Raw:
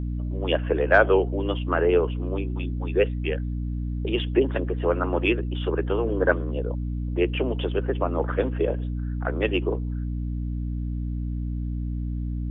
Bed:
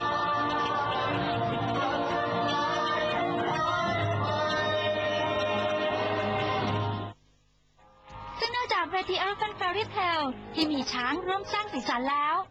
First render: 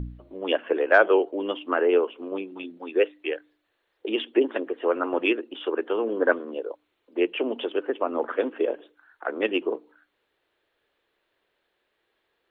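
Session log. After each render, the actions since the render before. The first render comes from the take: de-hum 60 Hz, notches 5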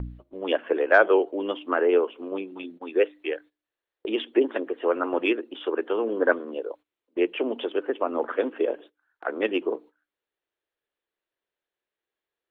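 gate -44 dBFS, range -16 dB; dynamic bell 2.8 kHz, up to -4 dB, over -46 dBFS, Q 6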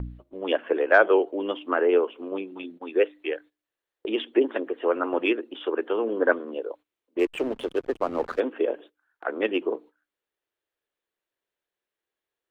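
7.19–8.40 s: hysteresis with a dead band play -32 dBFS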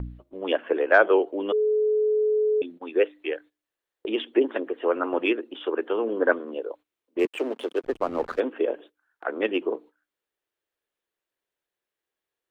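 1.52–2.62 s: bleep 427 Hz -19 dBFS; 7.25–7.84 s: high-pass 250 Hz 24 dB/octave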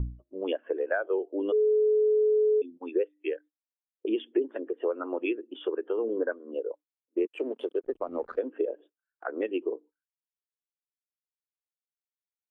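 compression 5:1, threshold -29 dBFS, peak gain reduction 15.5 dB; spectral contrast expander 1.5:1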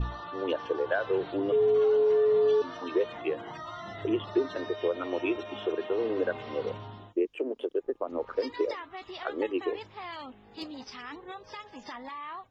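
add bed -13 dB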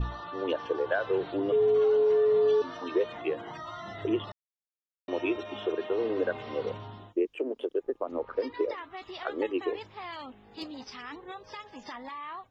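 4.32–5.08 s: mute; 8.19–8.78 s: distance through air 180 m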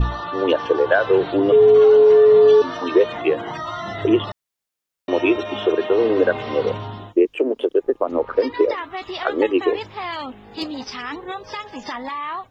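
trim +12 dB

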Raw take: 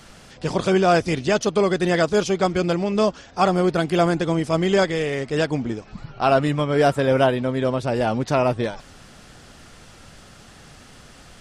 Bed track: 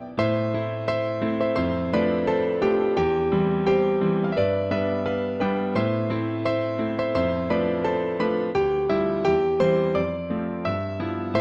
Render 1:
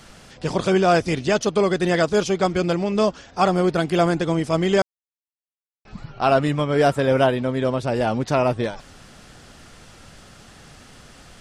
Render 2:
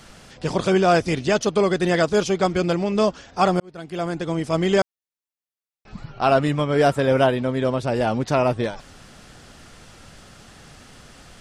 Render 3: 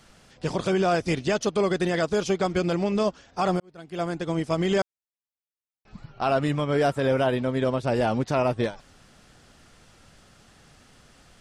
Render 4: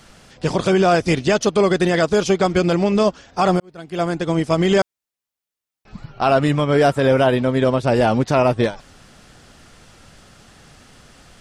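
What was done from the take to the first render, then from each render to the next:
4.82–5.85 s: mute
3.60–4.66 s: fade in
peak limiter -14 dBFS, peak gain reduction 8 dB; upward expansion 1.5:1, over -37 dBFS
trim +7.5 dB

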